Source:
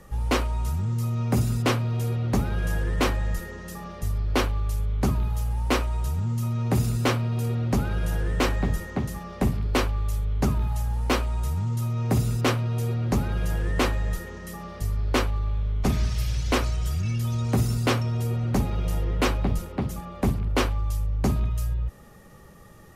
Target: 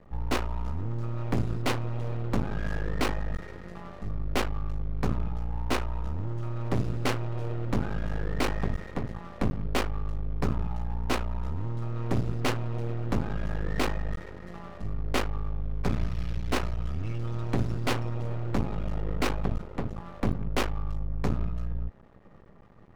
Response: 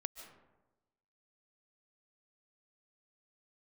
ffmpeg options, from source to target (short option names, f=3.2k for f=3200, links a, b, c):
-af "adynamicsmooth=sensitivity=6.5:basefreq=1.3k,aeval=exprs='max(val(0),0)':c=same"